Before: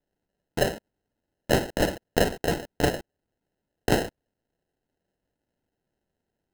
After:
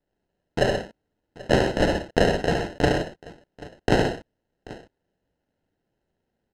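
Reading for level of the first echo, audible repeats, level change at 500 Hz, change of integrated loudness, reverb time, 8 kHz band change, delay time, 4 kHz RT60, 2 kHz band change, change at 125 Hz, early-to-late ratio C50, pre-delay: −4.5 dB, 3, +4.0 dB, +3.5 dB, no reverb audible, −4.0 dB, 71 ms, no reverb audible, +3.5 dB, +4.5 dB, no reverb audible, no reverb audible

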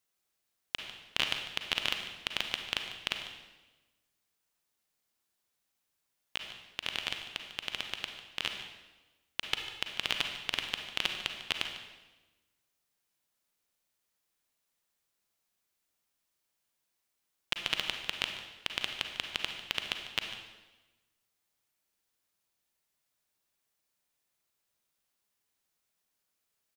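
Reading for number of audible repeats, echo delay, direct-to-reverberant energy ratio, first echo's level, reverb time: 1, 148 ms, 4.0 dB, −15.0 dB, 1.2 s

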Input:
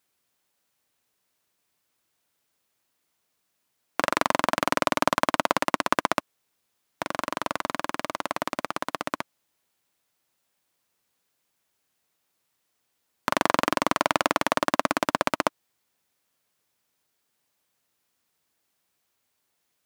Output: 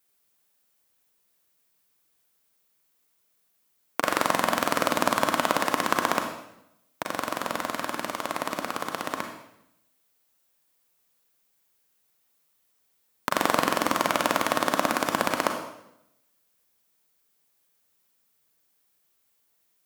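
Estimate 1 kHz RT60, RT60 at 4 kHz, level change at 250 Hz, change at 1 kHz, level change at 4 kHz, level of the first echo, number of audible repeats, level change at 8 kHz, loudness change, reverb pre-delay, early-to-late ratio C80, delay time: 0.75 s, 0.75 s, 0.0 dB, −0.5 dB, +0.5 dB, no echo audible, no echo audible, +2.5 dB, 0.0 dB, 33 ms, 8.0 dB, no echo audible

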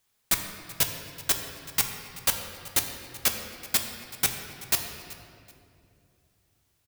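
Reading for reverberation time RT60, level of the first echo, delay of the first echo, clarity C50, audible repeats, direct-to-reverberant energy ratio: 2.5 s, −19.5 dB, 380 ms, 5.5 dB, 2, 3.5 dB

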